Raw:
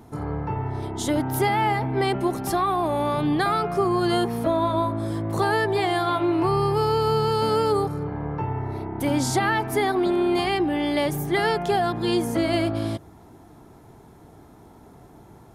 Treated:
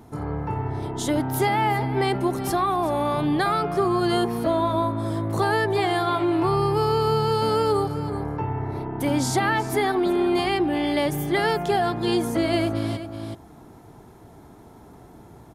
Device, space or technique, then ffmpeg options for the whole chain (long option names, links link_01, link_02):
ducked delay: -filter_complex "[0:a]asplit=3[link_01][link_02][link_03];[link_02]adelay=375,volume=-4dB[link_04];[link_03]apad=whole_len=702058[link_05];[link_04][link_05]sidechaincompress=threshold=-30dB:ratio=8:attack=16:release=725[link_06];[link_01][link_06]amix=inputs=2:normalize=0"